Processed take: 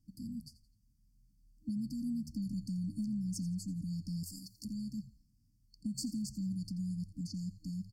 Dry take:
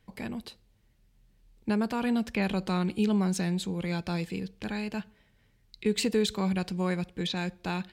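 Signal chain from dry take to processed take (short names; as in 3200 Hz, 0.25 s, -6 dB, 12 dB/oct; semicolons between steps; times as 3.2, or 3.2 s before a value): FFT band-reject 310–4400 Hz; 4.23–4.65 tilt +4.5 dB/oct; compressor, threshold -29 dBFS, peak gain reduction 6 dB; on a send: frequency-shifting echo 85 ms, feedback 36%, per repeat -79 Hz, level -16 dB; on the sum: gain -5 dB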